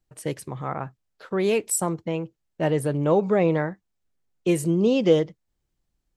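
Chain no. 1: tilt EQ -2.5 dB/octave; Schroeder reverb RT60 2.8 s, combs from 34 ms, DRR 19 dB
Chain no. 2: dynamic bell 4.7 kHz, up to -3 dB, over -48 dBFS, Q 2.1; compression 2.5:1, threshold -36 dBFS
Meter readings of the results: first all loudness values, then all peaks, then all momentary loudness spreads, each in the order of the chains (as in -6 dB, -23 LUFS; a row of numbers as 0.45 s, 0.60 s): -20.5 LUFS, -35.5 LUFS; -3.5 dBFS, -20.5 dBFS; 13 LU, 10 LU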